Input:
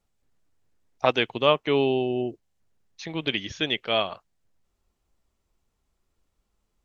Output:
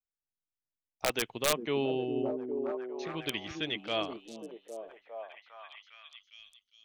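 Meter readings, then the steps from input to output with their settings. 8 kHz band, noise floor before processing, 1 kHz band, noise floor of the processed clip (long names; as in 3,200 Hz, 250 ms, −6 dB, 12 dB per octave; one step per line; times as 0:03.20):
can't be measured, −77 dBFS, −9.5 dB, below −85 dBFS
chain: noise gate with hold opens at −60 dBFS
wrap-around overflow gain 9.5 dB
on a send: echo through a band-pass that steps 405 ms, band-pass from 260 Hz, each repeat 0.7 octaves, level −1 dB
on the sum: level −8.5 dB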